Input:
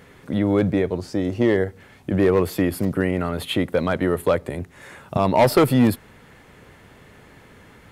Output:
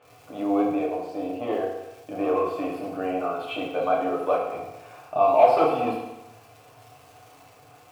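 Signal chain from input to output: vowel filter a; band noise 88–140 Hz -70 dBFS; crackle 220/s -49 dBFS; FDN reverb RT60 0.98 s, low-frequency decay 0.9×, high-frequency decay 0.9×, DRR -4.5 dB; gain +3.5 dB

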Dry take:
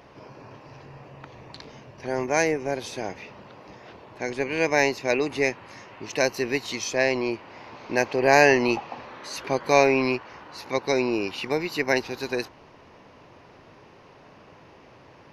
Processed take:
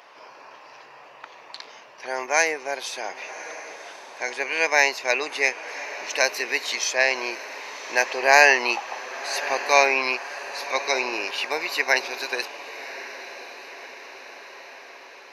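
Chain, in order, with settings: HPF 820 Hz 12 dB/oct; on a send: diffused feedback echo 1.108 s, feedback 59%, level -14 dB; on the sum: gain +5.5 dB

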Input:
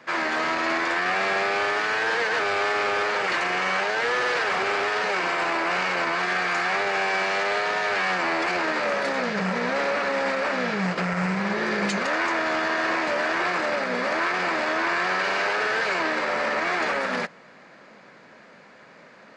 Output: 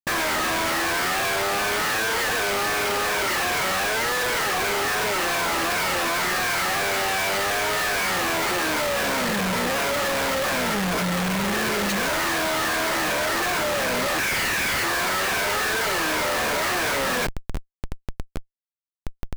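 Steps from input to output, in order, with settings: moving spectral ripple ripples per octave 1.7, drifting -2.7 Hz, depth 12 dB; 14.18–14.84 Bessel high-pass 2800 Hz, order 6; Schmitt trigger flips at -37.5 dBFS

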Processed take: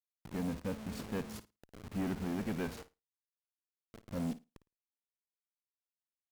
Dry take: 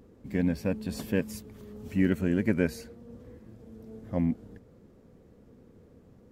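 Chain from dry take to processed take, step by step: level-crossing sampler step -36.5 dBFS; tube stage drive 26 dB, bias 0.25; flutter echo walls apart 9.4 m, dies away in 0.22 s; gain -4.5 dB

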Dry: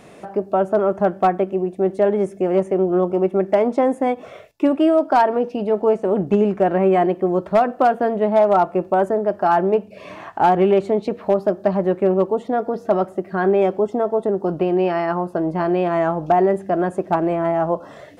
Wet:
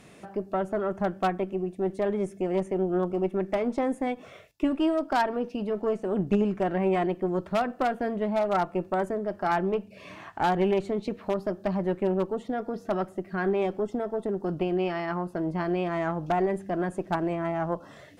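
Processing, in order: bell 620 Hz -8 dB 2.1 oct; added harmonics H 2 -11 dB, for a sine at -10.5 dBFS; gain -3.5 dB

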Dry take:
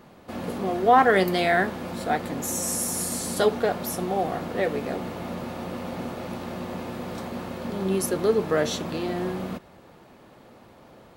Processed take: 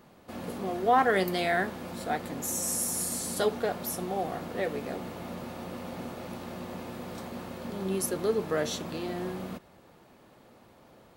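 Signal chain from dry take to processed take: high shelf 5800 Hz +5 dB; gain -6 dB

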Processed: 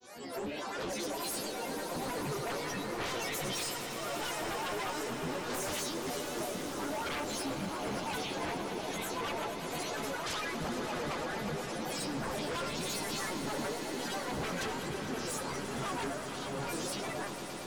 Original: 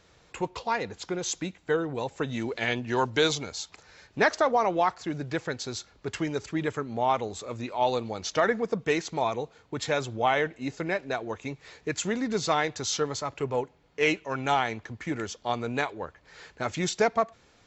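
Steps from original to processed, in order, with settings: spectral swells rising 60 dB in 0.56 s; HPF 93 Hz 24 dB/oct; bell 2100 Hz -14 dB 0.74 oct; reverse; compressor 10:1, threshold -37 dBFS, peak gain reduction 20 dB; reverse; resonator bank C4 fifth, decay 0.47 s; grains, grains 29/s, spray 23 ms, pitch spread up and down by 12 st; sine folder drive 19 dB, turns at -41.5 dBFS; on a send: swelling echo 0.115 s, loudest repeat 5, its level -12.5 dB; on the sum: gain +7.5 dB

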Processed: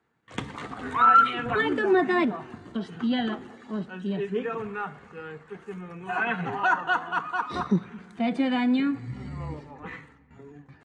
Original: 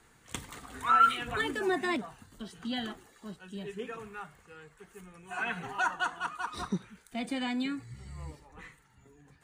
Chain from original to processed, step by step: gate with hold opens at -49 dBFS; in parallel at -0.5 dB: compressor, threshold -40 dBFS, peak gain reduction 20.5 dB; on the sum: overloaded stage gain 14.5 dB; HPF 120 Hz 12 dB/oct; tempo 0.87×; tape spacing loss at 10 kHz 26 dB; on a send at -20 dB: reverb RT60 2.6 s, pre-delay 6 ms; on the sum: gain +8 dB

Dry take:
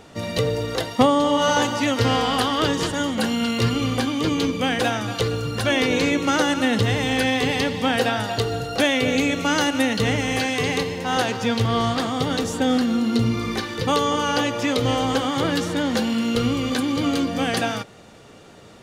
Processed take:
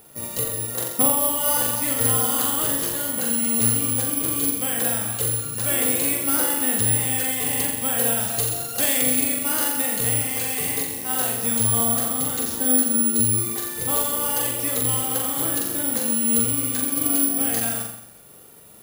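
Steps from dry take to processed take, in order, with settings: 8.17–9.16 high shelf 5400 Hz +10 dB; on a send: flutter echo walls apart 7.4 m, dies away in 0.76 s; on the sum: careless resampling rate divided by 4×, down none, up zero stuff; gain -10 dB

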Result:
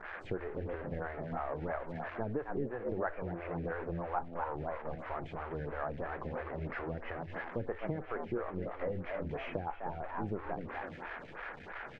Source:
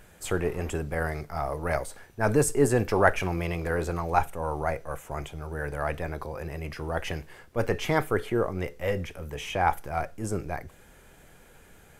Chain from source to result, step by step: switching spikes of -16.5 dBFS; LPF 1800 Hz 24 dB/oct; frequency-shifting echo 0.251 s, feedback 35%, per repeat +85 Hz, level -8 dB; on a send at -23 dB: reverb RT60 1.3 s, pre-delay 6 ms; on the sum: compressor 5:1, threshold -33 dBFS, peak gain reduction 17 dB; photocell phaser 3 Hz; gain +1 dB

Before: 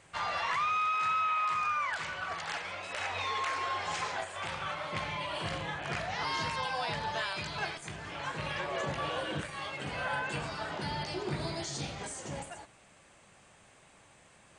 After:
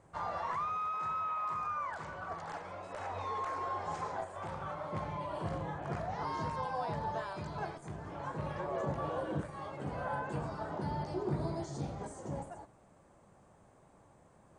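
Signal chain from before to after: EQ curve 310 Hz 0 dB, 1000 Hz -3 dB, 2700 Hz -21 dB, 6900 Hz -14 dB; gain +1.5 dB

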